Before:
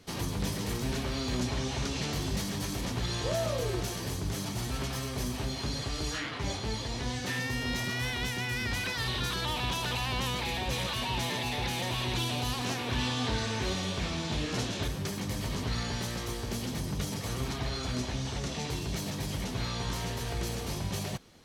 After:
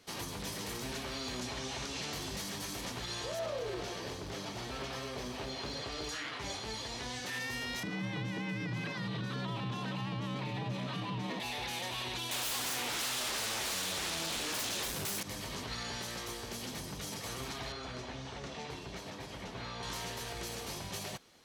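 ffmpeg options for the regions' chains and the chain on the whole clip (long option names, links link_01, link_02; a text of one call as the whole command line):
ffmpeg -i in.wav -filter_complex "[0:a]asettb=1/sr,asplit=3[link_01][link_02][link_03];[link_01]atrim=end=3.394[link_04];[link_02]atrim=start=3.39:end=6.09,asetpts=PTS-STARTPTS,afade=type=in:duration=0.004:curve=qsin,afade=type=out:start_time=2.696:duration=0.004:curve=qsin,acrossover=split=5600[link_05][link_06];[link_06]acompressor=threshold=-59dB:ratio=4:attack=1:release=60[link_07];[link_05][link_07]amix=inputs=2:normalize=0,asoftclip=type=hard:threshold=-27dB,equalizer=frequency=490:width=1.3:gain=5[link_08];[link_03]atrim=start=6.086[link_09];[link_04][link_08]acrossfade=duration=0.004:curve1=hsin:curve2=qsin[link_10];[link_10][link_09]acrossfade=duration=0.004:curve1=qsin:curve2=hsin,asettb=1/sr,asplit=3[link_11][link_12][link_13];[link_11]atrim=end=7.834[link_14];[link_12]atrim=start=7.83:end=11.4,asetpts=PTS-STARTPTS,afade=type=in:duration=0.004:curve=qsin,afade=type=out:start_time=3.566:duration=0.004:curve=qsin,aemphasis=mode=reproduction:type=riaa,afreqshift=68[link_15];[link_13]atrim=start=11.396[link_16];[link_14][link_15]acrossfade=duration=0.004:curve1=hsin:curve2=qsin[link_17];[link_17][link_16]acrossfade=duration=0.004:curve1=qsin:curve2=hsin,asettb=1/sr,asplit=3[link_18][link_19][link_20];[link_18]atrim=end=12.314[link_21];[link_19]atrim=start=12.31:end=15.23,asetpts=PTS-STARTPTS,afade=type=in:duration=0.004:curve=qsin,afade=type=out:start_time=2.916:duration=0.004:curve=qsin,highshelf=frequency=7200:gain=11.5,aeval=exprs='0.141*sin(PI/2*5.62*val(0)/0.141)':channel_layout=same[link_22];[link_20]atrim=start=15.226[link_23];[link_21][link_22]acrossfade=duration=0.004:curve1=hsin:curve2=qsin[link_24];[link_24][link_23]acrossfade=duration=0.004:curve1=qsin:curve2=hsin,asettb=1/sr,asplit=3[link_25][link_26][link_27];[link_25]atrim=end=17.724[link_28];[link_26]atrim=start=17.72:end=19.83,asetpts=PTS-STARTPTS,afade=type=in:duration=0.004:curve=qsin,afade=type=out:start_time=2.106:duration=0.004:curve=qsin,aemphasis=mode=reproduction:type=75kf,bandreject=frequency=50:width_type=h:width=6,bandreject=frequency=100:width_type=h:width=6,bandreject=frequency=150:width_type=h:width=6,bandreject=frequency=200:width_type=h:width=6,bandreject=frequency=250:width_type=h:width=6,bandreject=frequency=300:width_type=h:width=6,bandreject=frequency=350:width_type=h:width=6[link_29];[link_27]atrim=start=19.826[link_30];[link_28][link_29]acrossfade=duration=0.004:curve1=hsin:curve2=qsin[link_31];[link_31][link_30]acrossfade=duration=0.004:curve1=qsin:curve2=hsin,lowshelf=frequency=270:gain=-12,alimiter=level_in=3.5dB:limit=-24dB:level=0:latency=1,volume=-3.5dB,volume=-2dB" out.wav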